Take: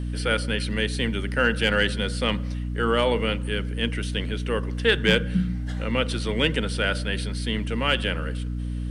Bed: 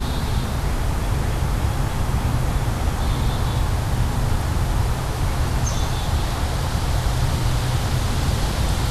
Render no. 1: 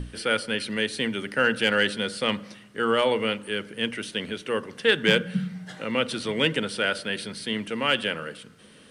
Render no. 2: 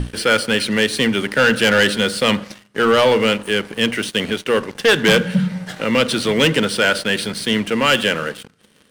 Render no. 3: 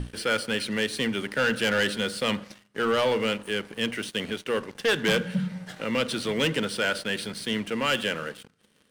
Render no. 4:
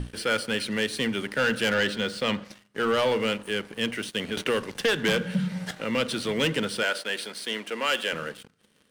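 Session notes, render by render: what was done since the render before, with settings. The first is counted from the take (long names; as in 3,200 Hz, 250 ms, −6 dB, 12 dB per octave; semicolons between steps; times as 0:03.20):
mains-hum notches 60/120/180/240/300 Hz
leveller curve on the samples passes 3; every ending faded ahead of time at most 520 dB per second
level −10 dB
0:01.74–0:02.45: parametric band 11,000 Hz −11 dB 0.73 octaves; 0:04.37–0:05.71: multiband upward and downward compressor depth 70%; 0:06.83–0:08.13: high-pass filter 380 Hz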